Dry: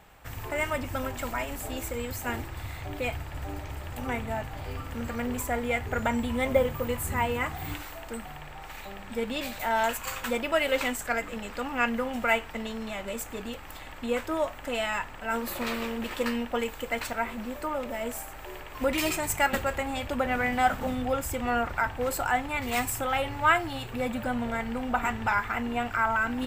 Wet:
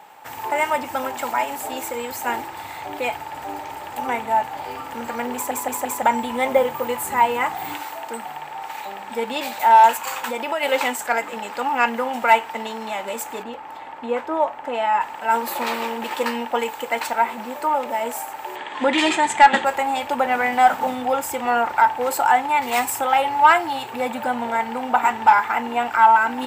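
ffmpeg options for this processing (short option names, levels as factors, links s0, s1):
-filter_complex "[0:a]asettb=1/sr,asplit=3[s0][s1][s2];[s0]atrim=end=9.954[s3];[s1]atrim=start=9.95:end=10.63,asetpts=PTS-STARTPTS,afade=t=in:d=0.004:c=qsin,afade=t=out:st=0.676:d=0.004:c=qsin,acompressor=threshold=0.0355:ratio=3:attack=3.2:release=140:knee=1:detection=peak[s4];[s2]atrim=start=10.626[s5];[s3][s4]acrossfade=d=0.004:c1=hsin:c2=qsin[s6];[s6][s5]acrossfade=d=0.004:c1=qsin:c2=hsin,asplit=3[s7][s8][s9];[s7]afade=t=out:st=13.42:d=0.02[s10];[s8]lowpass=f=1400:p=1,afade=t=in:st=13.42:d=0.02,afade=t=out:st=15:d=0.02[s11];[s9]afade=t=in:st=15:d=0.02[s12];[s10][s11][s12]amix=inputs=3:normalize=0,asettb=1/sr,asplit=3[s13][s14][s15];[s13]atrim=end=18.564[s16];[s14]atrim=start=18.56:end=19.65,asetpts=PTS-STARTPTS,afade=t=in:d=0.004:c=qsin,afade=t=out:st=1.086:d=0.004:c=qsin,highpass=100,equalizer=f=220:t=q:w=4:g=8,equalizer=f=310:t=q:w=4:g=5,equalizer=f=1800:t=q:w=4:g=8,equalizer=f=3400:t=q:w=4:g=10,equalizer=f=5500:t=q:w=4:g=-7,lowpass=f=7900:w=0.5412,lowpass=f=7900:w=1.3066[s17];[s15]atrim=start=19.646[s18];[s16][s17]acrossfade=d=0.004:c1=hsin:c2=qsin[s19];[s19][s18]acrossfade=d=0.004:c1=qsin:c2=hsin,asplit=5[s20][s21][s22][s23][s24];[s20]atrim=end=5.512[s25];[s21]atrim=start=5.338:end=5.512[s26];[s22]atrim=start=5.338:end=5.512[s27];[s23]atrim=start=5.338:end=5.512[s28];[s24]atrim=start=6.018[s29];[s25][s26]acrossfade=d=0.004:c1=hsin:c2=hsin[s30];[s30][s27]acrossfade=d=0.004:c1=hsin:c2=hsin[s31];[s31][s28]acrossfade=d=0.004:c1=hsin:c2=hsin[s32];[s32][s29]acrossfade=d=0.004:c1=hsin:c2=hsin,highpass=290,equalizer=f=870:w=5.7:g=14.5,acontrast=52"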